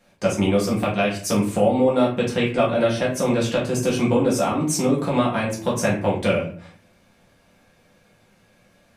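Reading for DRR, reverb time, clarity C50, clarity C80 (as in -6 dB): -6.0 dB, 0.50 s, 6.5 dB, 11.0 dB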